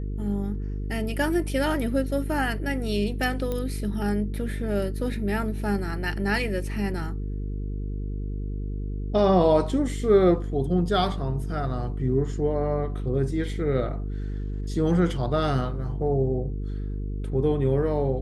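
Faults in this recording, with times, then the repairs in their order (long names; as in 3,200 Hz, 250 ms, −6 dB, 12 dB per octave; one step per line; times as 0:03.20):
mains buzz 50 Hz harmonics 9 −30 dBFS
0:03.52: click −17 dBFS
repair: click removal
hum removal 50 Hz, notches 9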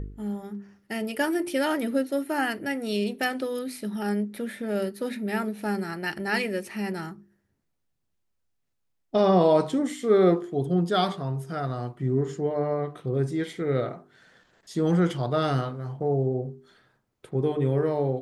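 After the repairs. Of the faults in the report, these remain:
none of them is left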